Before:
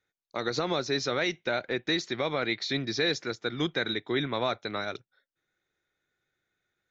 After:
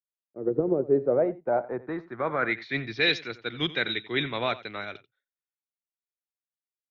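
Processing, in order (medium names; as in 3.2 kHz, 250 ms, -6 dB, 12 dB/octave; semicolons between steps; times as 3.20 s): low-pass sweep 400 Hz -> 2.8 kHz, 0.68–3.07 s; delay 89 ms -15.5 dB; three bands expanded up and down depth 100%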